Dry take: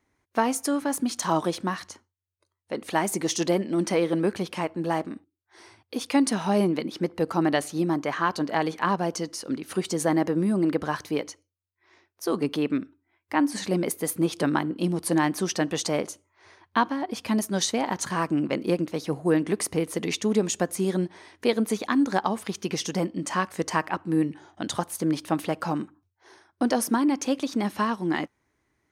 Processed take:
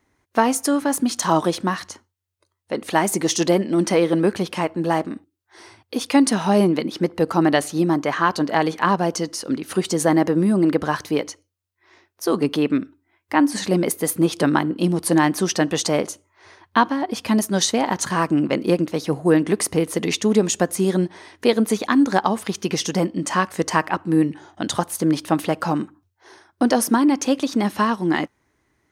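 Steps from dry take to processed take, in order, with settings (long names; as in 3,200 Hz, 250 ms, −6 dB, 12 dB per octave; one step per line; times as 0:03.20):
notch filter 2,300 Hz, Q 28
level +6 dB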